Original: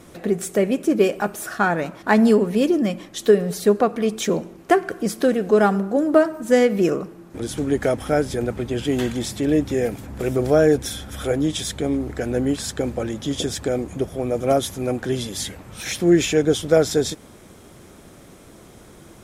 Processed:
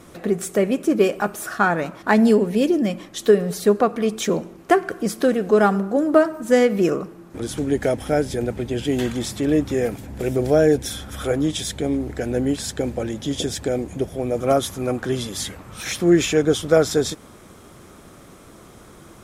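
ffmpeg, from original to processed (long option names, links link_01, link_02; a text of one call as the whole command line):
ffmpeg -i in.wav -af "asetnsamples=nb_out_samples=441:pad=0,asendcmd='2.11 equalizer g -4.5;2.91 equalizer g 2.5;7.59 equalizer g -5.5;9.05 equalizer g 3.5;9.97 equalizer g -6;10.9 equalizer g 3.5;11.51 equalizer g -4;14.37 equalizer g 6',equalizer=frequency=1200:width_type=o:width=0.48:gain=3.5" out.wav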